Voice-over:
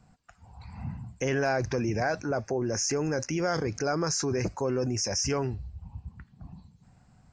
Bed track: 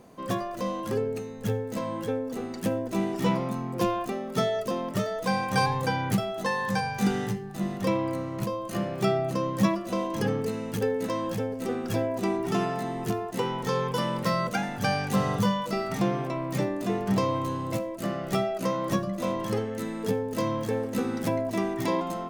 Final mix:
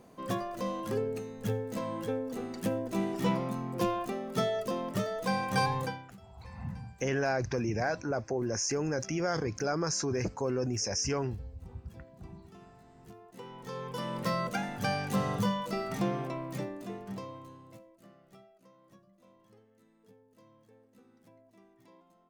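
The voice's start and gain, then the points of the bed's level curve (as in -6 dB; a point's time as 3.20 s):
5.80 s, -3.0 dB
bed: 5.82 s -4 dB
6.14 s -27.5 dB
12.83 s -27.5 dB
14.25 s -5 dB
16.25 s -5 dB
18.61 s -33 dB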